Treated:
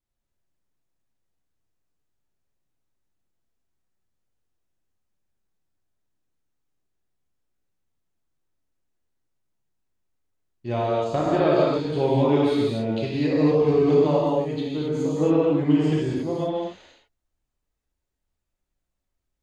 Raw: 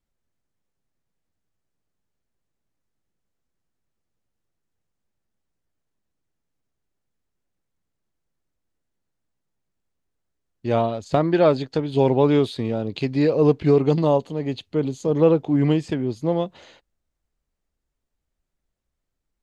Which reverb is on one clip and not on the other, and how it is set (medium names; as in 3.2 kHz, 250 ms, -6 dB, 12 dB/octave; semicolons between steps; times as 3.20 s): gated-style reverb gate 300 ms flat, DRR -6.5 dB; trim -8 dB